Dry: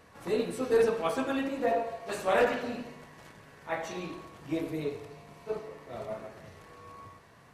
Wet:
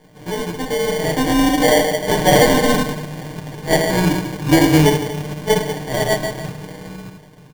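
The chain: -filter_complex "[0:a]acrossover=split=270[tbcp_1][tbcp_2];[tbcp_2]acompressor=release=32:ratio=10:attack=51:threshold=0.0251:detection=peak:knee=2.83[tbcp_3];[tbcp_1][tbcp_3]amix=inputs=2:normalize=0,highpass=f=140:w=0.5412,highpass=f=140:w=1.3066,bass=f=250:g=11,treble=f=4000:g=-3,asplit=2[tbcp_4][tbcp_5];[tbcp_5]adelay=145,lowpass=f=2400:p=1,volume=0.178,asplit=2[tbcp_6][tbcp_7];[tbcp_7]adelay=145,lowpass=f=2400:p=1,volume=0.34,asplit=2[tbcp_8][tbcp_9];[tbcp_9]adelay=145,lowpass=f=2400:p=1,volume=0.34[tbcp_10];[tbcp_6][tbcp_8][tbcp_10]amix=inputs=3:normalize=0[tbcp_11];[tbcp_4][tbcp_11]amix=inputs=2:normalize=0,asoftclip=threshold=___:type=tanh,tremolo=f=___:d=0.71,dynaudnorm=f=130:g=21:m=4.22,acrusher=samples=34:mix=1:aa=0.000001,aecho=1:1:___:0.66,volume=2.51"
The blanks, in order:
0.0596, 240, 6.6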